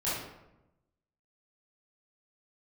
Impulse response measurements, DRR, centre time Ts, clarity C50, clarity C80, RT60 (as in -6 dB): -11.0 dB, 70 ms, -0.5 dB, 4.0 dB, 0.95 s